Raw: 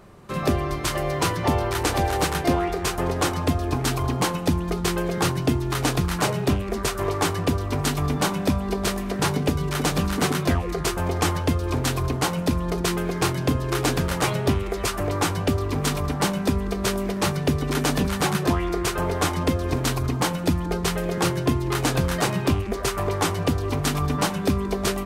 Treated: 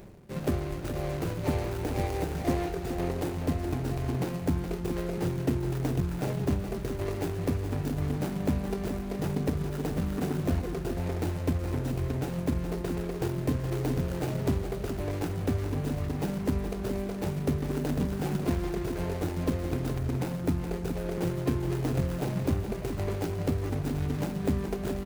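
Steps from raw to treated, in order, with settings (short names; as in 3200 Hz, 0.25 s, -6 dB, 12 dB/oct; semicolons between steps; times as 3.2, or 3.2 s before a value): median filter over 41 samples; high shelf 6000 Hz +10 dB; reverse; upward compressor, threshold -29 dBFS; reverse; echo 0.42 s -8.5 dB; gain -5.5 dB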